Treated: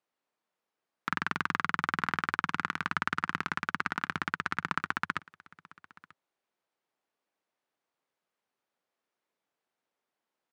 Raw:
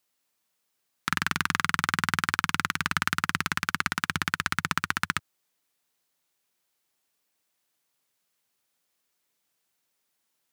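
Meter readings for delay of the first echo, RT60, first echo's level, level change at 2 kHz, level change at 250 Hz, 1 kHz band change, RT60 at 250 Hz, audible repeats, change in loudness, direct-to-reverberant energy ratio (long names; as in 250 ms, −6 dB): 939 ms, no reverb audible, −23.0 dB, −5.0 dB, −4.5 dB, −2.5 dB, no reverb audible, 1, −5.0 dB, no reverb audible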